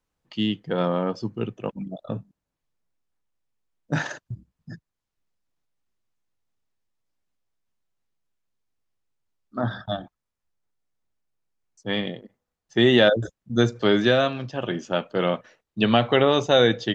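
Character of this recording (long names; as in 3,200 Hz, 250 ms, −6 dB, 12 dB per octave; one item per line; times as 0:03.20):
background noise floor −84 dBFS
spectral slope −4.0 dB per octave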